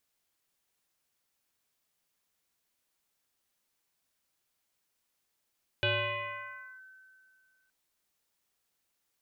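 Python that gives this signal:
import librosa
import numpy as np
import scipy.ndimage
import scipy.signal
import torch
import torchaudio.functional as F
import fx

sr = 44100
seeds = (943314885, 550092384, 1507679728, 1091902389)

y = fx.fm2(sr, length_s=1.87, level_db=-24.0, carrier_hz=1530.0, ratio=0.31, index=3.7, index_s=0.98, decay_s=2.32, shape='linear')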